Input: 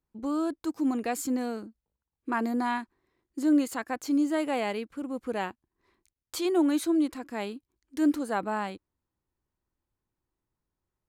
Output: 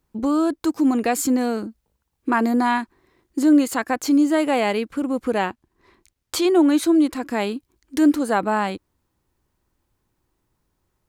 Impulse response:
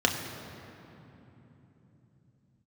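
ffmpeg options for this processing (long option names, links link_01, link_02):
-filter_complex "[0:a]asplit=2[link_01][link_02];[link_02]acompressor=threshold=-36dB:ratio=6,volume=3dB[link_03];[link_01][link_03]amix=inputs=2:normalize=0,asettb=1/sr,asplit=3[link_04][link_05][link_06];[link_04]atrim=end=5.384[link_07];[link_05]atrim=start=5.38:end=6.83,asetpts=PTS-STARTPTS,afade=type=in:duration=0.004:curve=qsin,afade=type=out:start_time=1.446:duration=0.004:curve=qsin,highshelf=frequency=7800:gain=-5.5[link_08];[link_06]atrim=start=6.826[link_09];[link_07][link_08]acrossfade=duration=0.004:curve1=hsin:curve2=qsin[link_10];[link_10][link_09]acrossfade=duration=0.004:curve1=qsin:curve2=hsin,volume=6dB"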